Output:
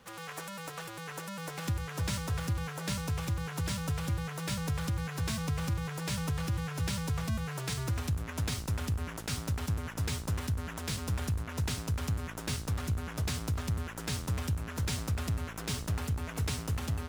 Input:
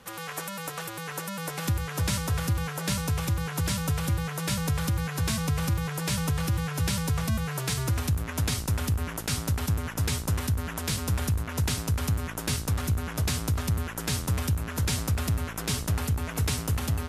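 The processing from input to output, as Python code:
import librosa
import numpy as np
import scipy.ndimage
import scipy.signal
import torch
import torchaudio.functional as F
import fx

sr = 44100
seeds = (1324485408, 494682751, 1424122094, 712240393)

y = scipy.signal.medfilt(x, 3)
y = y * 10.0 ** (-5.5 / 20.0)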